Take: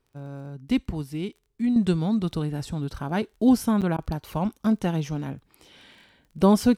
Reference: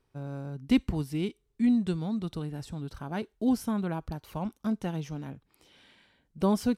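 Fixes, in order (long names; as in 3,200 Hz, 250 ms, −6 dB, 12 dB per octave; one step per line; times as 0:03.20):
click removal
repair the gap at 0:01.58/0:03.81, 7.6 ms
repair the gap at 0:03.97, 13 ms
level 0 dB, from 0:01.76 −7.5 dB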